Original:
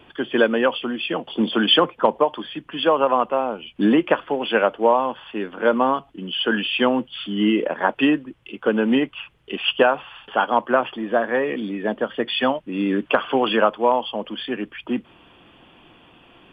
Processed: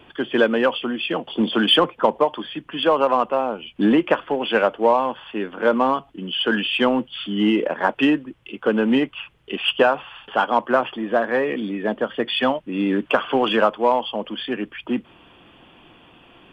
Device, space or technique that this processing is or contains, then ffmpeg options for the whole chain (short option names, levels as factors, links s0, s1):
parallel distortion: -filter_complex "[0:a]asplit=2[s0][s1];[s1]asoftclip=type=hard:threshold=0.126,volume=0.251[s2];[s0][s2]amix=inputs=2:normalize=0,volume=0.891"